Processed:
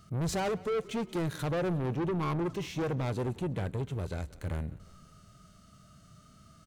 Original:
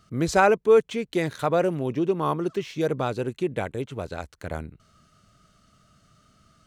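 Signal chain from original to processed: high shelf 6600 Hz +8.5 dB; harmonic-percussive split percussive -10 dB; low shelf 370 Hz +6 dB; limiter -15 dBFS, peak gain reduction 9.5 dB; soft clip -29.5 dBFS, distortion -7 dB; frequency-shifting echo 0.179 s, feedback 60%, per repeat -35 Hz, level -21.5 dB; on a send at -21.5 dB: reverb RT60 0.75 s, pre-delay 3 ms; on the sum: gain +1 dB

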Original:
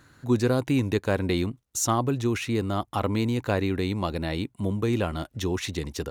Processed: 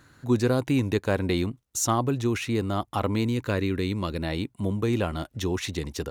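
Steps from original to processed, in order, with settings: 3.25–4.23 bell 760 Hz -12 dB 0.4 oct

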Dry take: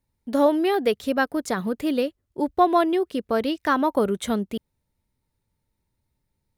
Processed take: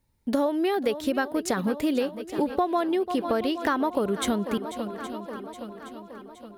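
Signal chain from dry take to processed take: swung echo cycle 0.819 s, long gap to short 1.5:1, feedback 49%, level -16.5 dB; compressor 6:1, threshold -27 dBFS, peak gain reduction 13.5 dB; gain +5 dB

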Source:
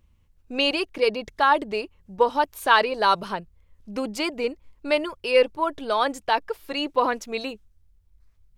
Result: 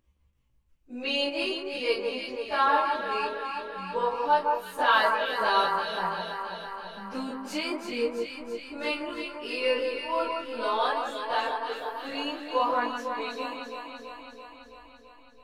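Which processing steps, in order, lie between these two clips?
chorus 0.26 Hz, delay 16 ms, depth 5.2 ms; transient shaper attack 0 dB, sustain -7 dB; low shelf 100 Hz -5 dB; plain phase-vocoder stretch 1.8×; echo with dull and thin repeats by turns 0.166 s, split 1600 Hz, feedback 81%, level -4 dB

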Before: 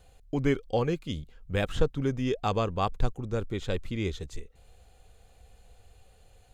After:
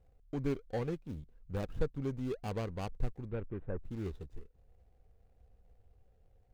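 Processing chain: median filter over 41 samples; 3.25–3.79 LPF 3600 Hz -> 1600 Hz 24 dB/oct; gain -7.5 dB

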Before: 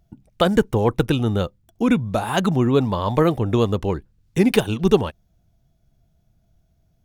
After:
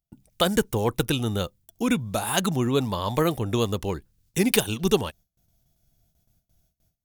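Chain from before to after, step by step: gate with hold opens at -53 dBFS; pre-emphasis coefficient 0.8; gain +8 dB

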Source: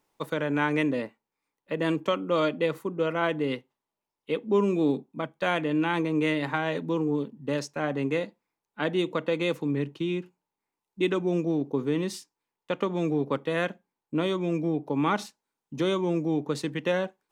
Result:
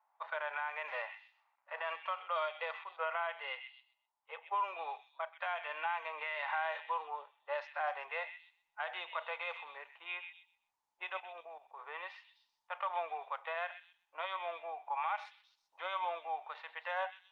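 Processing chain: 0.88–1.88 G.711 law mismatch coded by mu; steep high-pass 700 Hz 48 dB/oct; low-pass opened by the level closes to 1200 Hz, open at -27 dBFS; dynamic EQ 4300 Hz, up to -4 dB, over -52 dBFS, Q 2.6; harmonic-percussive split percussive -12 dB; compressor 12:1, threshold -35 dBFS, peak gain reduction 12 dB; limiter -33.5 dBFS, peak gain reduction 8.5 dB; 11.17–11.82 level quantiser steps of 14 dB; air absorption 290 m; delay with a stepping band-pass 0.128 s, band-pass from 2700 Hz, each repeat 0.7 oct, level -7 dB; gain +8.5 dB; Opus 48 kbps 48000 Hz

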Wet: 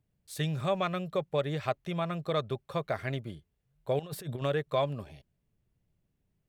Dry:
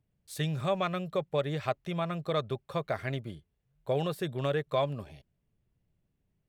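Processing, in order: 3.99–4.42 negative-ratio compressor -37 dBFS, ratio -0.5

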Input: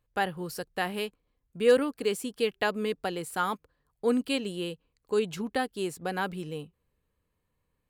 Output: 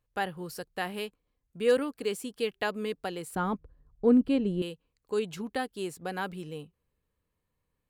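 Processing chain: 3.35–4.62 tilt -4.5 dB/oct; gain -3 dB

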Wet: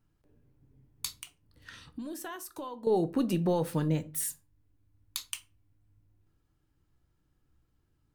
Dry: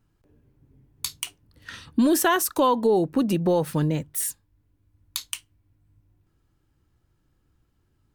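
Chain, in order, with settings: 1.22–2.87 compressor 2.5:1, threshold -40 dBFS, peak gain reduction 15.5 dB; shoebox room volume 170 m³, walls furnished, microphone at 0.46 m; gain -6 dB

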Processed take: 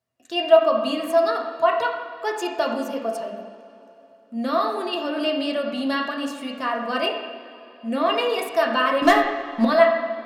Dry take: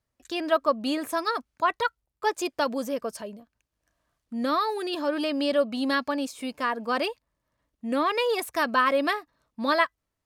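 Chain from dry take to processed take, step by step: HPF 100 Hz 24 dB/oct; 9.02–9.65 sample leveller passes 3; small resonant body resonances 670/2800 Hz, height 15 dB, ringing for 85 ms; reverb, pre-delay 3 ms, DRR 0 dB; gain -2 dB

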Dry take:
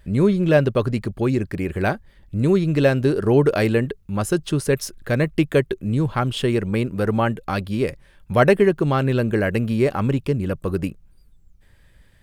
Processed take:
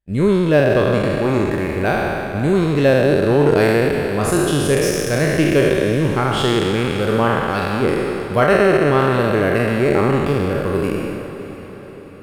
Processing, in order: spectral trails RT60 2.43 s; expander -23 dBFS; on a send: diffused feedback echo 0.561 s, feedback 51%, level -12.5 dB; on the sum: maximiser +2 dB; gain -2.5 dB

